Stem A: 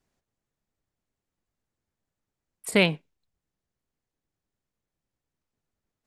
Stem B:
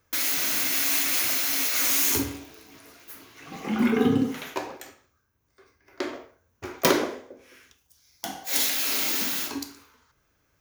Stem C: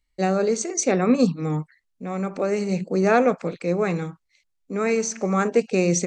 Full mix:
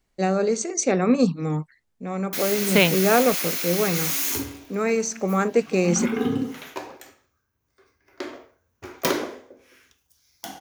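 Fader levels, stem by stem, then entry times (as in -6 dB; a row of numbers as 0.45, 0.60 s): +3.0, -2.5, -0.5 dB; 0.00, 2.20, 0.00 s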